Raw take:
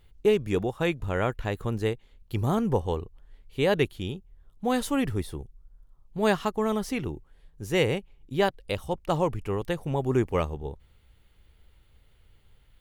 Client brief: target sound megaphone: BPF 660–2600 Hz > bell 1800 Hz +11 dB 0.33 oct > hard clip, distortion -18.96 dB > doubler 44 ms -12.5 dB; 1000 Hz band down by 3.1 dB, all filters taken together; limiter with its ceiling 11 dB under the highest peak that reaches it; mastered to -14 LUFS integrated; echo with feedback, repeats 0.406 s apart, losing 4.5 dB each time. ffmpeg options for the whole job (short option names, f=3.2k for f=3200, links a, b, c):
-filter_complex "[0:a]equalizer=f=1k:t=o:g=-3,alimiter=limit=-20dB:level=0:latency=1,highpass=660,lowpass=2.6k,equalizer=f=1.8k:t=o:w=0.33:g=11,aecho=1:1:406|812|1218|1624|2030|2436|2842|3248|3654:0.596|0.357|0.214|0.129|0.0772|0.0463|0.0278|0.0167|0.01,asoftclip=type=hard:threshold=-26dB,asplit=2[a][b];[b]adelay=44,volume=-12.5dB[c];[a][c]amix=inputs=2:normalize=0,volume=23.5dB"